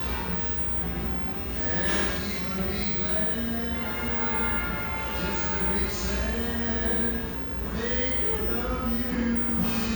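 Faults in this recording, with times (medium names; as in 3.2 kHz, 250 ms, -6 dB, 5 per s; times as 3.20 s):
2.17–2.61 s: clipped -26.5 dBFS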